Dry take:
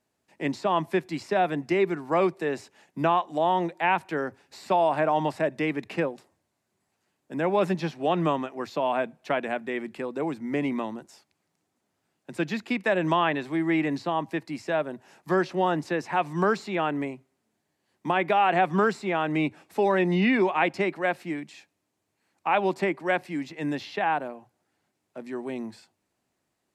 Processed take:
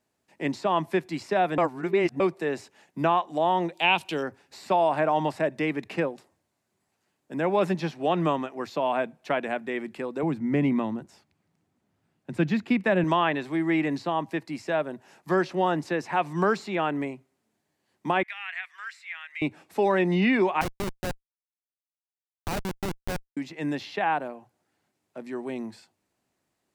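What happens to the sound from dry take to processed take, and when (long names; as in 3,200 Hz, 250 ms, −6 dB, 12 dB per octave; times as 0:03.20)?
0:01.58–0:02.20: reverse
0:03.73–0:04.23: high shelf with overshoot 2,300 Hz +8 dB, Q 3
0:10.23–0:13.04: bass and treble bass +10 dB, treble −6 dB
0:18.23–0:19.42: four-pole ladder high-pass 1,700 Hz, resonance 55%
0:20.61–0:23.37: comparator with hysteresis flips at −20.5 dBFS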